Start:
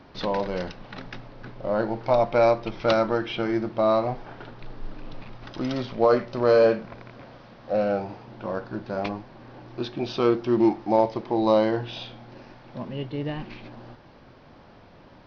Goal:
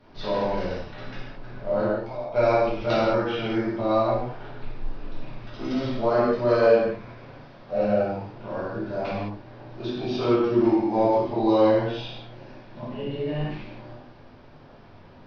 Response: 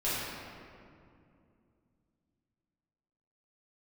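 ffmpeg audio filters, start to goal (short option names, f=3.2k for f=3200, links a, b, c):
-filter_complex "[0:a]asplit=3[a][b][c];[a]afade=t=out:st=1.85:d=0.02[d];[b]acompressor=threshold=-32dB:ratio=10,afade=t=in:st=1.85:d=0.02,afade=t=out:st=2.33:d=0.02[e];[c]afade=t=in:st=2.33:d=0.02[f];[d][e][f]amix=inputs=3:normalize=0[g];[1:a]atrim=start_sample=2205,afade=t=out:st=0.27:d=0.01,atrim=end_sample=12348[h];[g][h]afir=irnorm=-1:irlink=0,volume=-7.5dB"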